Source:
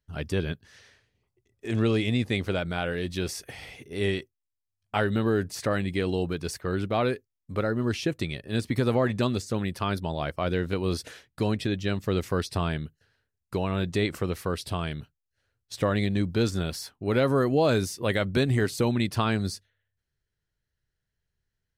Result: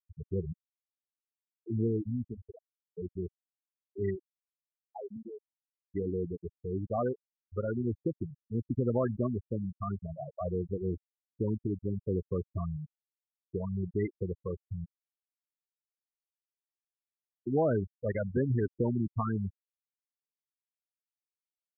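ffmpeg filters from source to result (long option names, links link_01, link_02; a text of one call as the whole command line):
ffmpeg -i in.wav -filter_complex "[0:a]asettb=1/sr,asplit=3[link_01][link_02][link_03];[link_01]atrim=end=14.854[link_04];[link_02]atrim=start=14.85:end=17.47,asetpts=PTS-STARTPTS,afade=type=in:duration=0.004:curve=qsin,afade=type=out:start_time=2.616:duration=0.004:curve=qsin,aderivative[link_05];[link_03]atrim=start=17.466[link_06];[link_04][link_05]acrossfade=duration=0.004:curve1=hsin:curve2=qsin[link_07];[link_07][link_06]acrossfade=duration=0.004:curve1=qsin:curve2=hsin,asplit=3[link_08][link_09][link_10];[link_08]atrim=end=2.97,asetpts=PTS-STARTPTS,afade=type=out:start_time=1.73:duration=1.24:silence=0.158489[link_11];[link_09]atrim=start=2.97:end=5.93,asetpts=PTS-STARTPTS,afade=type=in:duration=0.004:curve=hsin:silence=0.158489,afade=type=out:start_time=1.13:duration=1.83[link_12];[link_10]atrim=start=5.93,asetpts=PTS-STARTPTS,afade=type=in:duration=0.004:curve=hsin[link_13];[link_11][link_12][link_13]concat=n=3:v=0:a=1,afftfilt=real='re*gte(hypot(re,im),0.178)':imag='im*gte(hypot(re,im),0.178)':win_size=1024:overlap=0.75,volume=-4.5dB" out.wav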